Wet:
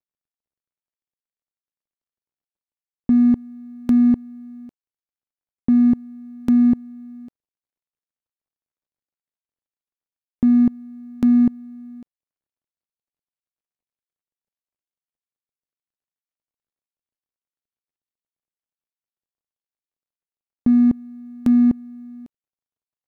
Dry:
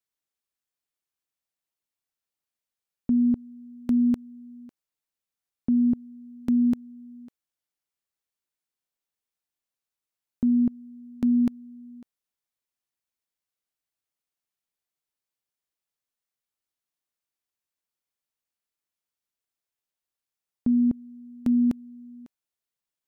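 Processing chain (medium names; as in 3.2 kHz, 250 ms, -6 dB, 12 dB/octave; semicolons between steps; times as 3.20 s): median filter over 41 samples; trim +7 dB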